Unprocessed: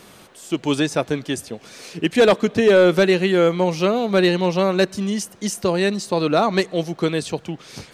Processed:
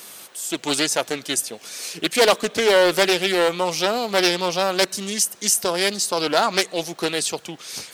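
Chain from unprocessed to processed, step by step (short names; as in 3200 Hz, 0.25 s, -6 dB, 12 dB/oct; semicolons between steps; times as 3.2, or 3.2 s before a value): RIAA curve recording; Doppler distortion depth 0.29 ms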